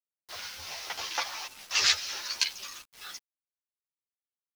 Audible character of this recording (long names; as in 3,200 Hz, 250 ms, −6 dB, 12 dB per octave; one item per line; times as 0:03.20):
sample-and-hold tremolo 4.1 Hz, depth 85%
a quantiser's noise floor 8 bits, dither none
a shimmering, thickened sound